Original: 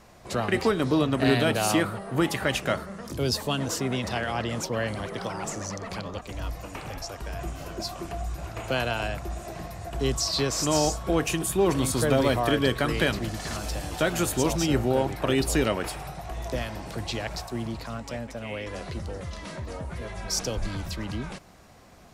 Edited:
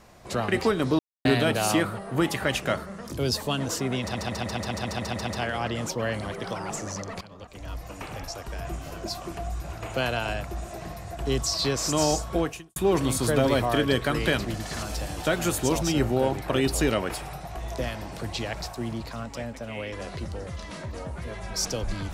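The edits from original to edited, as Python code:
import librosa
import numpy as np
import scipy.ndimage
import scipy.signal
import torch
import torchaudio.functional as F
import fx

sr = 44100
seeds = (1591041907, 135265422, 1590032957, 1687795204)

y = fx.edit(x, sr, fx.silence(start_s=0.99, length_s=0.26),
    fx.stutter(start_s=4.01, slice_s=0.14, count=10),
    fx.fade_in_from(start_s=5.95, length_s=0.81, floor_db=-15.5),
    fx.fade_out_span(start_s=11.12, length_s=0.38, curve='qua'), tone=tone)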